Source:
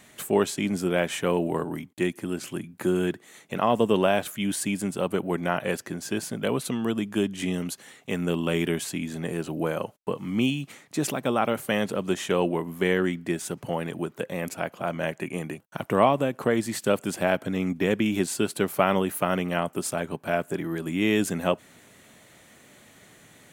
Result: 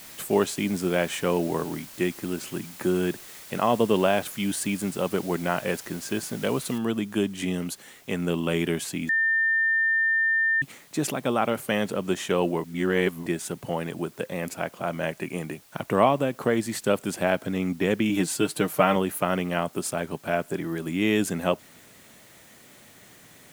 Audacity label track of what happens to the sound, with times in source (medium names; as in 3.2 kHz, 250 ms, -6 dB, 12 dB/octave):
6.780000	6.780000	noise floor step -45 dB -56 dB
9.090000	10.620000	bleep 1.8 kHz -19.5 dBFS
12.640000	13.260000	reverse
18.090000	18.960000	comb 6.5 ms